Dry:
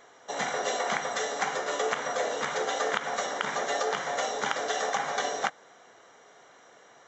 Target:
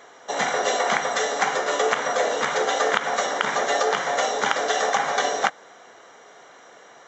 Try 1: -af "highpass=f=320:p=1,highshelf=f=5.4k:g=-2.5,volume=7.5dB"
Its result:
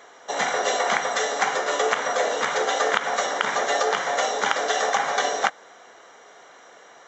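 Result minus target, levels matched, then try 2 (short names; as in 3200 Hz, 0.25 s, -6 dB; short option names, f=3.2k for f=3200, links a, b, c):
125 Hz band -3.5 dB
-af "highpass=f=160:p=1,highshelf=f=5.4k:g=-2.5,volume=7.5dB"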